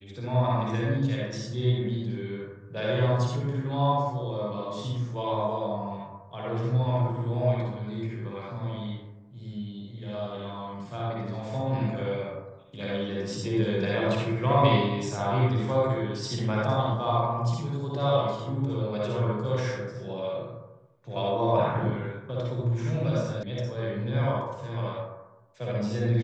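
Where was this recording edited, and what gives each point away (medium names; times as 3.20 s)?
23.43 s: sound stops dead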